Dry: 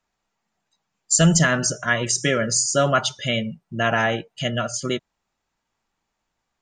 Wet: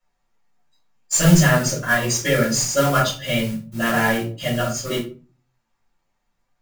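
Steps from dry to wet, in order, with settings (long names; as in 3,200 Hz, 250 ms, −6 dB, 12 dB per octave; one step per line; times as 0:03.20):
noise that follows the level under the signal 12 dB
rectangular room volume 200 cubic metres, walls furnished, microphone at 5.4 metres
flanger 0.75 Hz, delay 6.2 ms, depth 5.5 ms, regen +71%
level −5.5 dB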